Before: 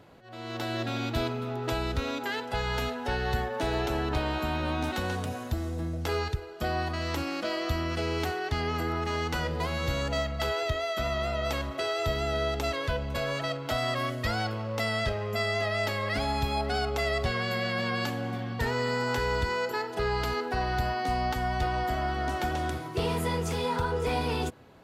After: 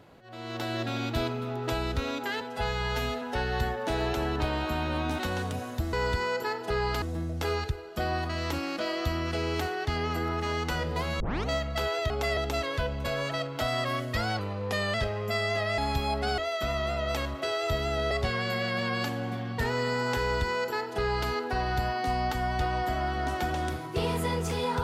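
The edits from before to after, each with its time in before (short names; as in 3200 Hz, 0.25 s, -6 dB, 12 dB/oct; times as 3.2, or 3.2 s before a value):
2.41–2.95 stretch 1.5×
9.84 tape start 0.28 s
10.74–12.47 swap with 16.85–17.12
14.49–14.99 speed 91%
15.83–16.25 cut
19.22–20.31 copy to 5.66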